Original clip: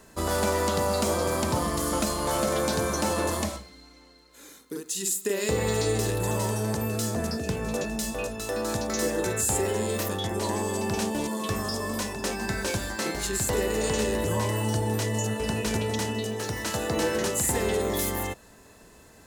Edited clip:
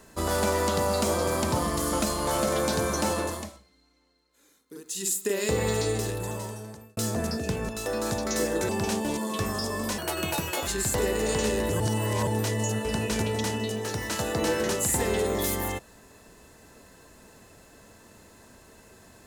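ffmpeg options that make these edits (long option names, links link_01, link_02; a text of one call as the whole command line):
ffmpeg -i in.wav -filter_complex "[0:a]asplit=10[link_01][link_02][link_03][link_04][link_05][link_06][link_07][link_08][link_09][link_10];[link_01]atrim=end=3.53,asetpts=PTS-STARTPTS,afade=type=out:start_time=3.09:duration=0.44:silence=0.199526[link_11];[link_02]atrim=start=3.53:end=4.65,asetpts=PTS-STARTPTS,volume=-14dB[link_12];[link_03]atrim=start=4.65:end=6.97,asetpts=PTS-STARTPTS,afade=type=in:duration=0.44:silence=0.199526,afade=type=out:start_time=1.01:duration=1.31[link_13];[link_04]atrim=start=6.97:end=7.692,asetpts=PTS-STARTPTS,afade=type=in:duration=0.004:curve=hsin[link_14];[link_05]atrim=start=8.318:end=9.322[link_15];[link_06]atrim=start=10.788:end=12.084[link_16];[link_07]atrim=start=12.08:end=13.22,asetpts=PTS-STARTPTS,asetrate=72765,aresample=44100,atrim=end_sample=30469,asetpts=PTS-STARTPTS[link_17];[link_08]atrim=start=13.216:end=14.352[link_18];[link_09]atrim=start=14.348:end=14.822,asetpts=PTS-STARTPTS,areverse[link_19];[link_10]atrim=start=14.818[link_20];[link_11][link_12][link_13][link_14]concat=n=4:v=0:a=1[link_21];[link_21][link_15]acrossfade=duration=0.004:curve1=hsin:curve2=hsin[link_22];[link_22][link_16]acrossfade=duration=0.004:curve1=hsin:curve2=hsin[link_23];[link_23][link_17]acrossfade=duration=0.004:curve1=hsin:curve2=hsin[link_24];[link_24][link_18]acrossfade=duration=0.004:curve1=hsin:curve2=hsin[link_25];[link_25][link_19]acrossfade=duration=0.004:curve1=hsin:curve2=hsin[link_26];[link_26][link_20]acrossfade=duration=0.004:curve1=hsin:curve2=hsin" out.wav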